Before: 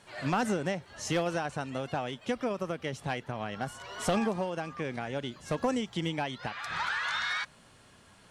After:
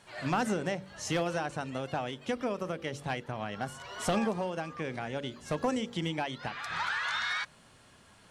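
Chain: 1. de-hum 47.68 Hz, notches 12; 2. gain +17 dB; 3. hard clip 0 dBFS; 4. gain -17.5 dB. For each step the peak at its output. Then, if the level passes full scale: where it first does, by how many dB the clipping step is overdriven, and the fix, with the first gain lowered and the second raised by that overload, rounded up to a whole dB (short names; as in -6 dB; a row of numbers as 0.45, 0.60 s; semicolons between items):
-19.0, -2.0, -2.0, -19.5 dBFS; no overload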